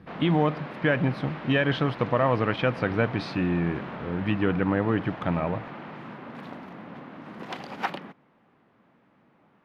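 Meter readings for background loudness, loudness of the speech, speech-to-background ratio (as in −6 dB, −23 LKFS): −38.5 LKFS, −26.5 LKFS, 12.0 dB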